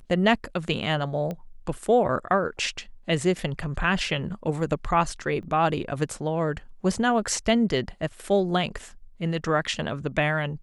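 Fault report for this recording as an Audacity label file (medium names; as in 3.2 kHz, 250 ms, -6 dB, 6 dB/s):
1.310000	1.310000	pop -20 dBFS
5.430000	5.430000	dropout 3.4 ms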